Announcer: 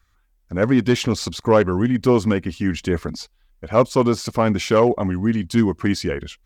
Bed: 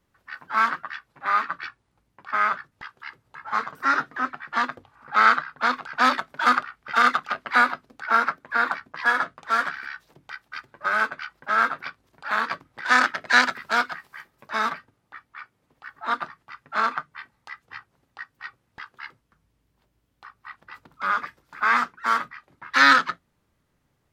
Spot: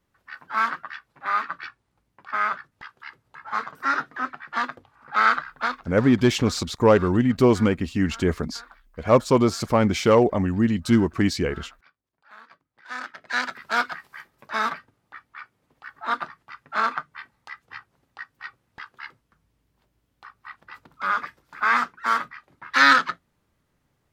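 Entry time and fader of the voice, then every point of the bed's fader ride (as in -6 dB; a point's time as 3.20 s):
5.35 s, -1.0 dB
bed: 5.64 s -2 dB
6.05 s -23.5 dB
12.56 s -23.5 dB
13.82 s 0 dB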